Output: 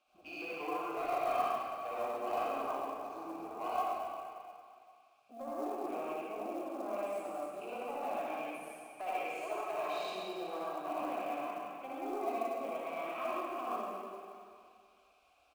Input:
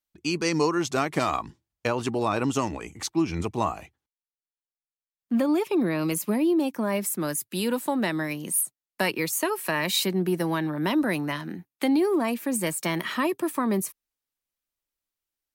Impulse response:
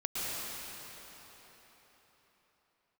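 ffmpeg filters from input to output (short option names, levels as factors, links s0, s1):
-filter_complex "[0:a]aeval=exprs='val(0)+0.5*0.0447*sgn(val(0))':c=same,afwtdn=0.0282,asettb=1/sr,asplit=3[s0][s1][s2];[s0]atrim=end=7.244[s3];[s1]atrim=start=7.24:end=8.4,asetpts=PTS-STARTPTS,afade=t=in:d=0.004:c=qsin,afade=t=out:st=1.156:d=0.004:c=qsin,equalizer=f=8900:w=1.2:g=12[s4];[s2]atrim=start=8.396[s5];[s3][s4]acrossfade=d=0.004:c1=hsin:c2=qsin[s6];[s6][s5]acrossfade=d=0.004:c1=qsin:c2=hsin,acrossover=split=240[s7][s8];[s7]acompressor=threshold=0.00891:ratio=6[s9];[s9][s8]amix=inputs=2:normalize=0,asplit=3[s10][s11][s12];[s10]bandpass=f=730:t=q:w=8,volume=1[s13];[s11]bandpass=f=1090:t=q:w=8,volume=0.501[s14];[s12]bandpass=f=2440:t=q:w=8,volume=0.355[s15];[s13][s14][s15]amix=inputs=3:normalize=0,bandreject=f=1800:w=20,asoftclip=type=tanh:threshold=0.0422,asplit=2[s16][s17];[s17]adelay=105,lowpass=f=3200:p=1,volume=0.126,asplit=2[s18][s19];[s19]adelay=105,lowpass=f=3200:p=1,volume=0.46,asplit=2[s20][s21];[s21]adelay=105,lowpass=f=3200:p=1,volume=0.46,asplit=2[s22][s23];[s23]adelay=105,lowpass=f=3200:p=1,volume=0.46[s24];[s16][s18][s20][s22][s24]amix=inputs=5:normalize=0[s25];[1:a]atrim=start_sample=2205,asetrate=83790,aresample=44100[s26];[s25][s26]afir=irnorm=-1:irlink=0,acrusher=bits=6:mode=log:mix=0:aa=0.000001"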